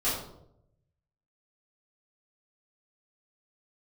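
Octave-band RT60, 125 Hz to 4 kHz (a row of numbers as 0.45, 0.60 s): 1.4, 0.85, 0.90, 0.65, 0.45, 0.45 s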